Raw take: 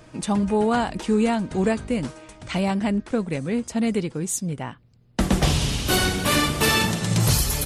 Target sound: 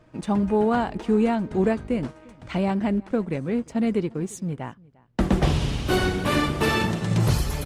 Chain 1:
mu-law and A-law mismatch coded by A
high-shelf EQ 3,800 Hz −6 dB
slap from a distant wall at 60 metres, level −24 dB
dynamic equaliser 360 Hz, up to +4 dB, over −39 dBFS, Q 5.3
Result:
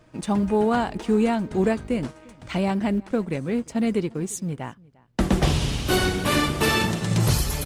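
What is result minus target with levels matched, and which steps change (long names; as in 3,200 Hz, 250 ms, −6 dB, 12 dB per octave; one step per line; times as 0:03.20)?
8,000 Hz band +6.5 dB
change: high-shelf EQ 3,800 Hz −14.5 dB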